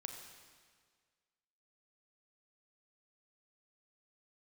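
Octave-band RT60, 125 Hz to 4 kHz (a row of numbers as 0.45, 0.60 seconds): 1.7, 1.7, 1.8, 1.7, 1.7, 1.6 seconds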